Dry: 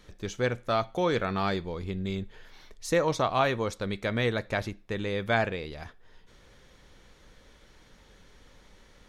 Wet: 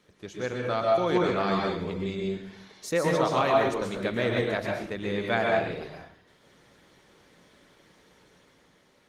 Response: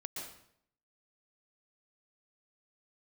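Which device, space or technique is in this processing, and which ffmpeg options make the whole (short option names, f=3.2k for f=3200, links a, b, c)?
far-field microphone of a smart speaker: -filter_complex "[1:a]atrim=start_sample=2205[a];[0:a][a]afir=irnorm=-1:irlink=0,highpass=130,dynaudnorm=f=130:g=11:m=3.5dB" -ar 48000 -c:a libopus -b:a 24k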